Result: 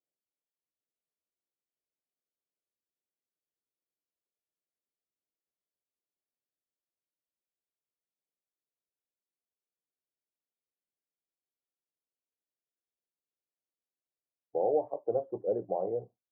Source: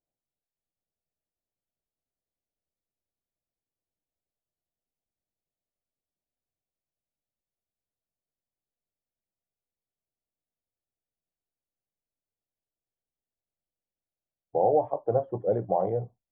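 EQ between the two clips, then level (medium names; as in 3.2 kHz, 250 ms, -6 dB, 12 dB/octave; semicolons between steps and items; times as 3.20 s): band-pass filter 400 Hz, Q 1.3; -3.0 dB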